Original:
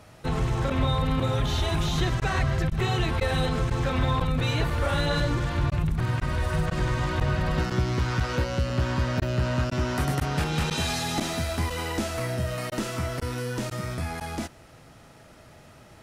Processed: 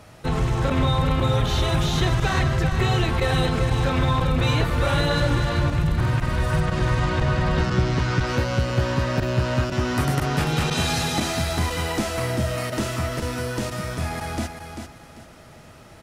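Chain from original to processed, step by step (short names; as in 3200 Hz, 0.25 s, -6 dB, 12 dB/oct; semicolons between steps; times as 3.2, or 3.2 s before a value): 6.6–8.27 LPF 8000 Hz 12 dB/oct; on a send: feedback echo 0.392 s, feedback 28%, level -7.5 dB; on the sum: gain +3.5 dB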